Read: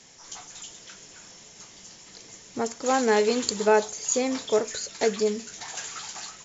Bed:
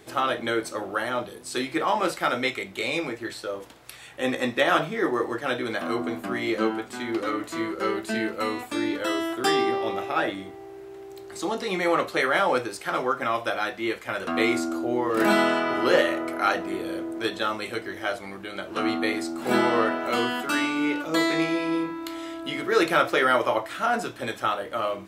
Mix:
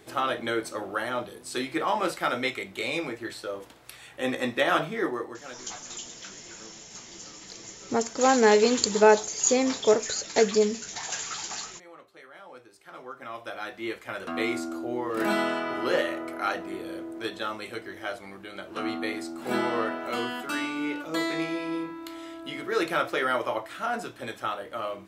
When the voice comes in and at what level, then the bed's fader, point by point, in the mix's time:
5.35 s, +2.5 dB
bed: 5.01 s -2.5 dB
5.92 s -26.5 dB
12.35 s -26.5 dB
13.84 s -5.5 dB

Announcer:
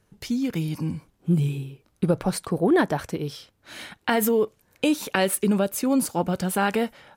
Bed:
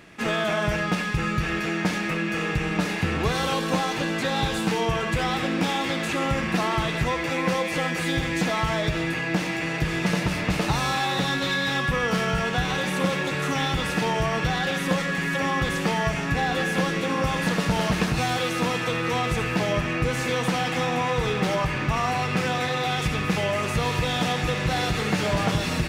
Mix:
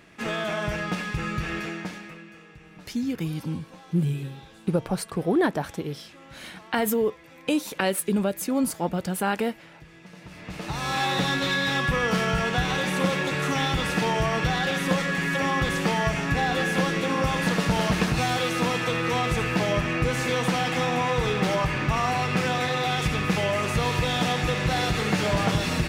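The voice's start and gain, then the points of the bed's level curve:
2.65 s, -2.5 dB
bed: 1.60 s -4 dB
2.46 s -23.5 dB
10.11 s -23.5 dB
11.01 s 0 dB

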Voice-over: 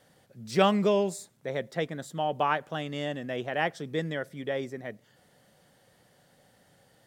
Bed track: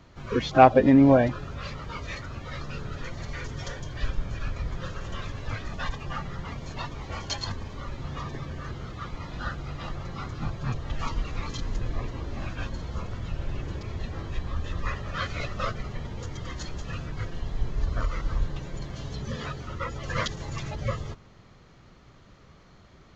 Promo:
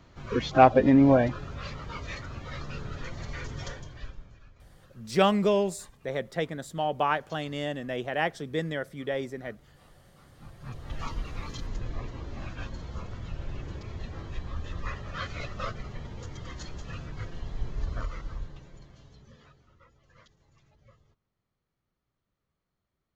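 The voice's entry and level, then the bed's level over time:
4.60 s, +0.5 dB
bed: 3.67 s -2 dB
4.50 s -23.5 dB
10.21 s -23.5 dB
10.94 s -4.5 dB
17.92 s -4.5 dB
20.09 s -30 dB

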